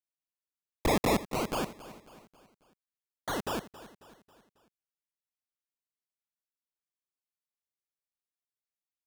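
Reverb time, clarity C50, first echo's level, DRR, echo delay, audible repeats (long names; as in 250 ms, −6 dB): no reverb audible, no reverb audible, −16.5 dB, no reverb audible, 272 ms, 3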